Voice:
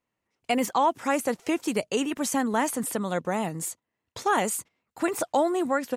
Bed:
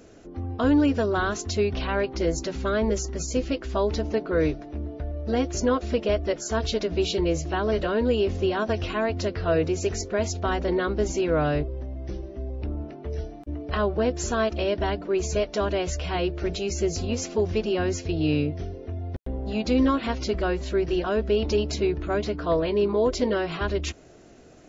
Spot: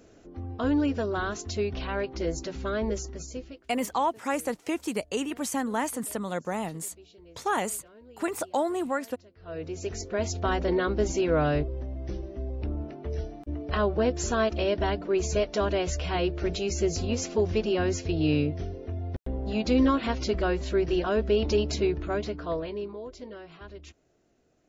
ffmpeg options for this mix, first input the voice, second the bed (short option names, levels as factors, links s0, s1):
-filter_complex "[0:a]adelay=3200,volume=0.668[s0];[1:a]volume=13.3,afade=t=out:st=2.94:d=0.72:silence=0.0668344,afade=t=in:st=9.36:d=1.1:silence=0.0421697,afade=t=out:st=21.78:d=1.24:silence=0.141254[s1];[s0][s1]amix=inputs=2:normalize=0"